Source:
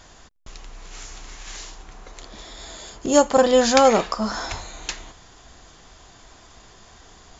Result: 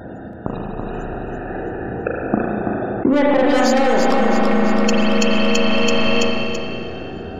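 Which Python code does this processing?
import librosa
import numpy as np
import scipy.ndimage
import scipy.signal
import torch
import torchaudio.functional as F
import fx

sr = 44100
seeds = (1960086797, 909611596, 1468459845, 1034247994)

y = fx.wiener(x, sr, points=41)
y = scipy.signal.sosfilt(scipy.signal.butter(2, 130.0, 'highpass', fs=sr, output='sos'), y)
y = fx.dereverb_blind(y, sr, rt60_s=0.87)
y = fx.lowpass(y, sr, hz=2100.0, slope=12, at=(1.03, 3.49))
y = fx.leveller(y, sr, passes=3)
y = fx.spec_topn(y, sr, count=64)
y = 10.0 ** (-8.5 / 20.0) * np.tanh(y / 10.0 ** (-8.5 / 20.0))
y = fx.echo_feedback(y, sr, ms=332, feedback_pct=39, wet_db=-5)
y = fx.rev_spring(y, sr, rt60_s=2.7, pass_ms=(34, 38), chirp_ms=55, drr_db=-2.5)
y = fx.env_flatten(y, sr, amount_pct=100)
y = F.gain(torch.from_numpy(y), -10.0).numpy()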